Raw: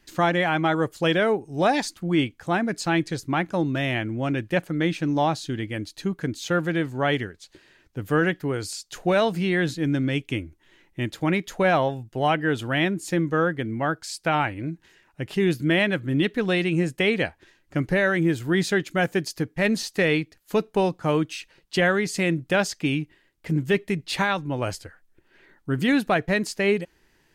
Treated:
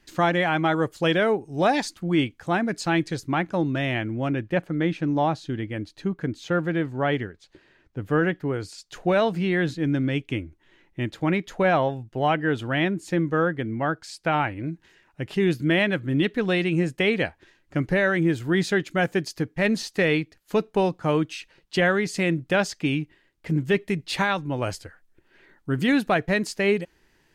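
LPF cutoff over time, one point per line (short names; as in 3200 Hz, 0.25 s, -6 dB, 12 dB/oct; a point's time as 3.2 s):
LPF 6 dB/oct
8600 Hz
from 3.35 s 4500 Hz
from 4.28 s 2000 Hz
from 8.78 s 3300 Hz
from 14.64 s 6200 Hz
from 23.81 s 11000 Hz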